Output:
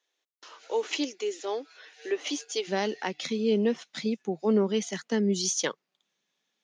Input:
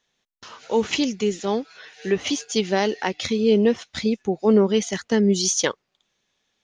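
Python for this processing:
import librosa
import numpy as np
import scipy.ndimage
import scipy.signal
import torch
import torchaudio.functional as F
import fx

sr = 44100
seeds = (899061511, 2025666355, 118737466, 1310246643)

y = fx.cheby1_highpass(x, sr, hz=fx.steps((0.0, 290.0), (2.67, 150.0)), order=5)
y = y * librosa.db_to_amplitude(-6.5)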